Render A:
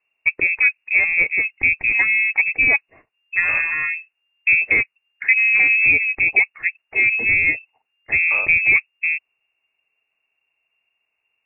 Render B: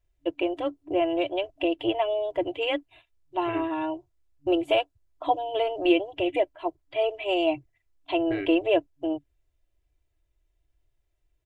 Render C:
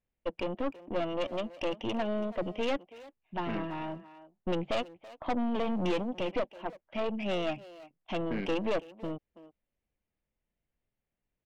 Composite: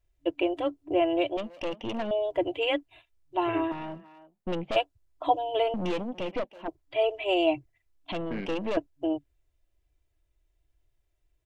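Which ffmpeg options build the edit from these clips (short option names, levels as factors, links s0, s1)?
-filter_complex "[2:a]asplit=4[s0][s1][s2][s3];[1:a]asplit=5[s4][s5][s6][s7][s8];[s4]atrim=end=1.372[s9];[s0]atrim=start=1.368:end=2.112[s10];[s5]atrim=start=2.108:end=3.722[s11];[s1]atrim=start=3.718:end=4.762[s12];[s6]atrim=start=4.758:end=5.742[s13];[s2]atrim=start=5.738:end=6.682[s14];[s7]atrim=start=6.678:end=8.122[s15];[s3]atrim=start=8.118:end=8.772[s16];[s8]atrim=start=8.768[s17];[s9][s10]acrossfade=d=0.004:c1=hsin:c2=hsin[s18];[s18][s11]acrossfade=d=0.004:c1=hsin:c2=hsin[s19];[s19][s12]acrossfade=d=0.004:c1=hsin:c2=hsin[s20];[s20][s13]acrossfade=d=0.004:c1=hsin:c2=hsin[s21];[s21][s14]acrossfade=d=0.004:c1=hsin:c2=hsin[s22];[s22][s15]acrossfade=d=0.004:c1=hsin:c2=hsin[s23];[s23][s16]acrossfade=d=0.004:c1=hsin:c2=hsin[s24];[s24][s17]acrossfade=d=0.004:c1=hsin:c2=hsin"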